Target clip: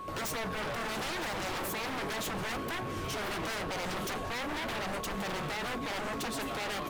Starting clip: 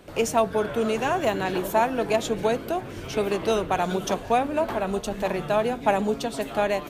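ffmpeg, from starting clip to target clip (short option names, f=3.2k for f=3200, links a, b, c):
-af "alimiter=limit=-19.5dB:level=0:latency=1:release=16,aeval=exprs='val(0)+0.01*sin(2*PI*1100*n/s)':c=same,aeval=exprs='0.0299*(abs(mod(val(0)/0.0299+3,4)-2)-1)':c=same"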